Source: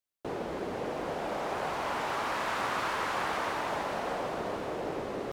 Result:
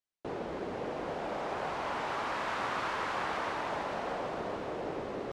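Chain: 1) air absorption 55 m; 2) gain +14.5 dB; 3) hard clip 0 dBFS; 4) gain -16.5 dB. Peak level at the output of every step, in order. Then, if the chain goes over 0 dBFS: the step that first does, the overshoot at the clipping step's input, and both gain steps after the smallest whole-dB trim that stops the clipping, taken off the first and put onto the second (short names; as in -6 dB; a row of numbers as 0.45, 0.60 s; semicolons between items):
-20.0, -5.5, -5.5, -22.0 dBFS; no overload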